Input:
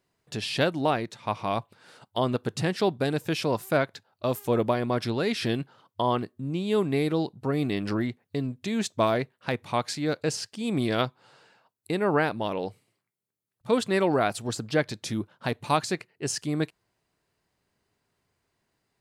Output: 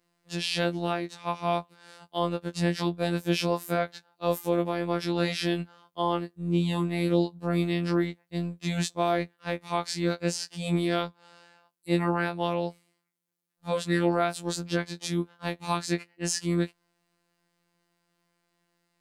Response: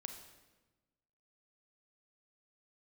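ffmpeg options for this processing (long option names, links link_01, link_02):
-af "alimiter=limit=-17dB:level=0:latency=1:release=243,afftfilt=real='hypot(re,im)*cos(PI*b)':imag='0':win_size=1024:overlap=0.75,afftfilt=real='re*2*eq(mod(b,4),0)':imag='im*2*eq(mod(b,4),0)':win_size=2048:overlap=0.75,volume=2dB"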